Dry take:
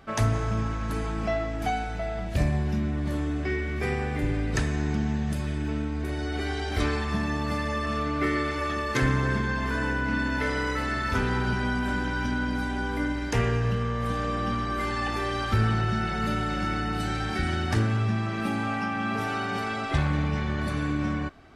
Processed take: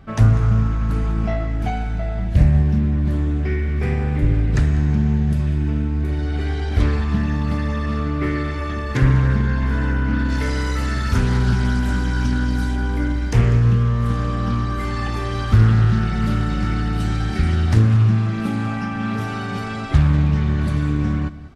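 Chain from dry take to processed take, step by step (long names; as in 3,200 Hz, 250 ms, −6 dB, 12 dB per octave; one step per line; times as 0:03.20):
bass and treble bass +12 dB, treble −3 dB, from 0:10.28 treble +10 dB, from 0:12.75 treble +3 dB
single-tap delay 196 ms −16.5 dB
highs frequency-modulated by the lows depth 0.41 ms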